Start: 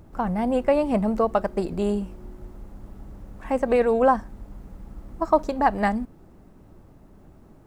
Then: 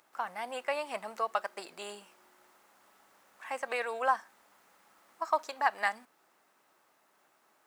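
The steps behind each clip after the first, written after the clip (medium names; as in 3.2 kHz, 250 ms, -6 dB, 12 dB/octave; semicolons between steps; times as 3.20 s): high-pass 1.3 kHz 12 dB/octave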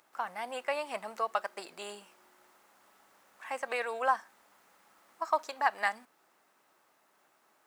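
no audible change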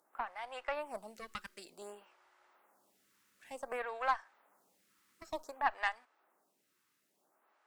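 Chebyshev shaper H 6 -20 dB, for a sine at -13 dBFS; lamp-driven phase shifter 0.55 Hz; trim -4 dB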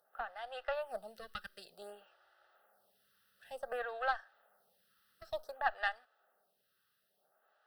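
static phaser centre 1.5 kHz, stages 8; trim +2.5 dB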